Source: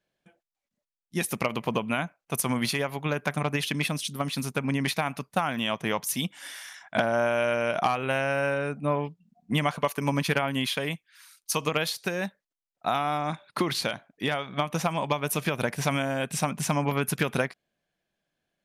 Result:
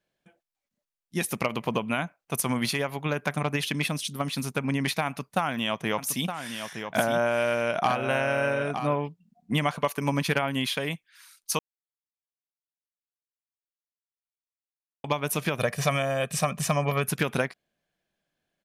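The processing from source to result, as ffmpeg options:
ffmpeg -i in.wav -filter_complex "[0:a]asplit=3[link_01][link_02][link_03];[link_01]afade=type=out:start_time=5.97:duration=0.02[link_04];[link_02]aecho=1:1:916:0.398,afade=type=in:start_time=5.97:duration=0.02,afade=type=out:start_time=8.93:duration=0.02[link_05];[link_03]afade=type=in:start_time=8.93:duration=0.02[link_06];[link_04][link_05][link_06]amix=inputs=3:normalize=0,asettb=1/sr,asplit=3[link_07][link_08][link_09];[link_07]atrim=end=15.594[link_10];[link_08]atrim=start=15.59:end=17.07,asetpts=PTS-STARTPTS,afade=type=in:duration=0.004:curve=qsin,afade=type=out:start_time=1.476:duration=0.004:curve=qsin,aecho=1:1:1.7:0.59,atrim=end_sample=65268[link_11];[link_09]atrim=start=17.066[link_12];[link_10][link_11]acrossfade=duration=0.004:curve1=hsin:curve2=qsin[link_13];[link_13][link_12]acrossfade=duration=0.004:curve1=qsin:curve2=hsin,asplit=3[link_14][link_15][link_16];[link_14]atrim=end=11.59,asetpts=PTS-STARTPTS,afade=type=out:start_time=11.586:duration=0.004:curve=hsin[link_17];[link_15]atrim=start=11.59:end=15.04,asetpts=PTS-STARTPTS,volume=0[link_18];[link_16]atrim=start=15.04,asetpts=PTS-STARTPTS,afade=type=in:duration=0.004:curve=hsin[link_19];[link_17][link_18][link_19]concat=n=3:v=0:a=1" out.wav

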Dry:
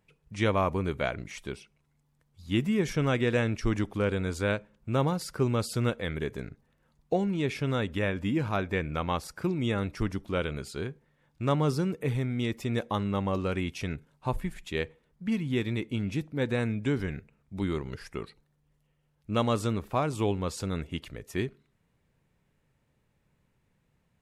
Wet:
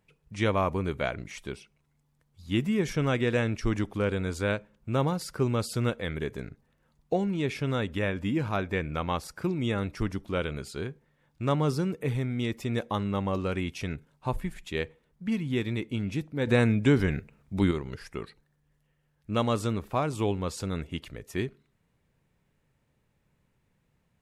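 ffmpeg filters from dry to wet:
ffmpeg -i in.wav -filter_complex "[0:a]asettb=1/sr,asplit=3[link_01][link_02][link_03];[link_01]atrim=end=18.224[link_04];[link_02]atrim=start=18.22:end=19.33,asetpts=PTS-STARTPTS,afade=type=in:duration=0.004:curve=qsin,afade=type=out:start_time=1.106:duration=0.004:curve=qsin,equalizer=frequency=1700:width_type=o:width=0.29:gain=8[link_05];[link_03]atrim=start=19.326[link_06];[link_04][link_05]acrossfade=duration=0.004:curve1=hsin:curve2=qsin[link_07];[link_07][link_06]acrossfade=duration=0.004:curve1=qsin:curve2=hsin,asplit=3[link_08][link_09][link_10];[link_08]atrim=end=16.472[link_11];[link_09]atrim=start=16.468:end=17.712,asetpts=PTS-STARTPTS,volume=6.5dB[link_12];[link_10]atrim=start=17.708[link_13];[link_11][link_12]acrossfade=duration=0.004:curve1=hsin:curve2=hsin[link_14];[link_14][link_13]acrossfade=duration=0.004:curve1=hsin:curve2=hsin" out.wav

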